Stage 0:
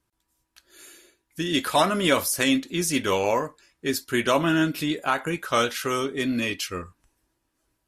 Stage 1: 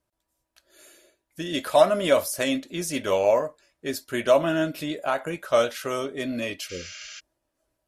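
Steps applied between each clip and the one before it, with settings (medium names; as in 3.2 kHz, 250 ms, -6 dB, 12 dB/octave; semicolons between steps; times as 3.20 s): spectral replace 6.72–7.17 s, 570–7400 Hz before; peaking EQ 610 Hz +14.5 dB 0.4 oct; trim -5 dB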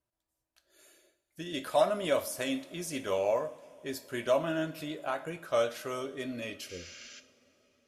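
two-slope reverb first 0.49 s, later 4.6 s, from -19 dB, DRR 10 dB; trim -8.5 dB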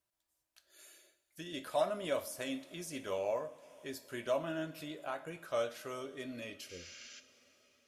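tape noise reduction on one side only encoder only; trim -6.5 dB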